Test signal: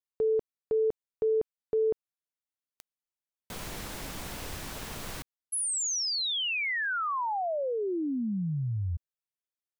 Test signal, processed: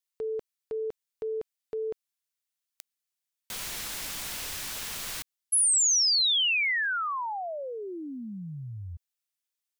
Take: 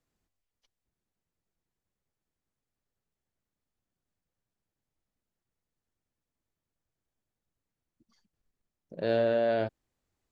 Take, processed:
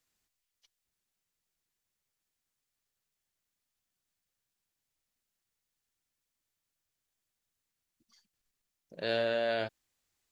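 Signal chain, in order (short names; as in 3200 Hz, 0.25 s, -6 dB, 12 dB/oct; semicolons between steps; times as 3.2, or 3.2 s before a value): tilt shelf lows -8 dB, about 1200 Hz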